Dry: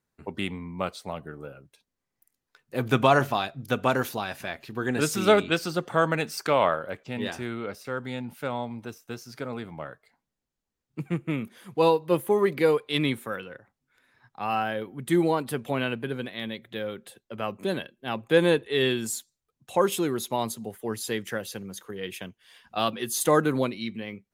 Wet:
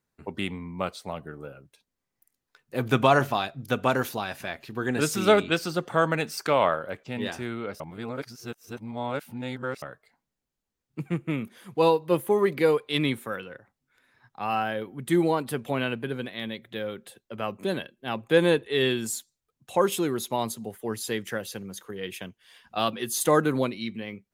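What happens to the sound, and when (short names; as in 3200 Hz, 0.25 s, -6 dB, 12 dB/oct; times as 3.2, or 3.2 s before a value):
7.8–9.82 reverse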